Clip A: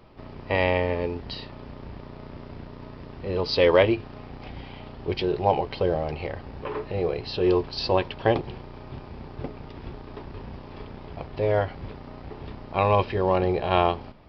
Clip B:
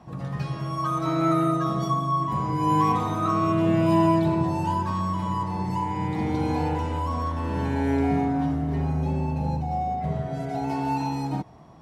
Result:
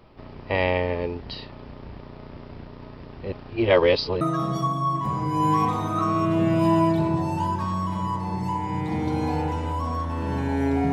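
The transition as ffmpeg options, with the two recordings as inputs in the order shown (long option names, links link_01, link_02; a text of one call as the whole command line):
ffmpeg -i cue0.wav -i cue1.wav -filter_complex "[0:a]apad=whole_dur=10.92,atrim=end=10.92,asplit=2[link_01][link_02];[link_01]atrim=end=3.322[link_03];[link_02]atrim=start=3.318:end=4.212,asetpts=PTS-STARTPTS,areverse[link_04];[1:a]atrim=start=1.478:end=8.19[link_05];[link_03][link_04]acrossfade=duration=0.004:curve1=hsin:curve2=hsin[link_06];[link_06][link_05]acrossfade=duration=0.004:curve1=hsin:curve2=hsin" out.wav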